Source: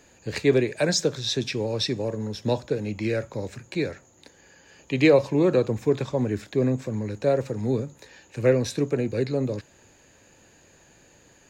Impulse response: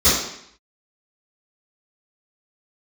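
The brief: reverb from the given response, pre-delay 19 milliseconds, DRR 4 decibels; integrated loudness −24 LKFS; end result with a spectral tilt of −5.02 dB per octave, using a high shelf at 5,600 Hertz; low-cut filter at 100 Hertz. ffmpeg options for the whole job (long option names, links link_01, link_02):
-filter_complex "[0:a]highpass=100,highshelf=frequency=5600:gain=7,asplit=2[link_01][link_02];[1:a]atrim=start_sample=2205,adelay=19[link_03];[link_02][link_03]afir=irnorm=-1:irlink=0,volume=-25dB[link_04];[link_01][link_04]amix=inputs=2:normalize=0,volume=-2dB"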